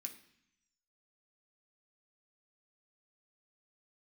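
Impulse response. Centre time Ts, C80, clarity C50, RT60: 12 ms, 14.5 dB, 11.5 dB, 0.70 s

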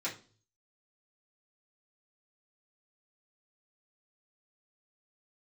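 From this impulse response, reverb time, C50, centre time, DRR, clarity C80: 0.40 s, 11.0 dB, 20 ms, −8.0 dB, 17.0 dB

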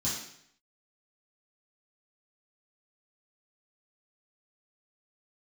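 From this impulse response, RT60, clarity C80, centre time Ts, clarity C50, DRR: 0.70 s, 6.0 dB, 51 ms, 2.5 dB, −11.0 dB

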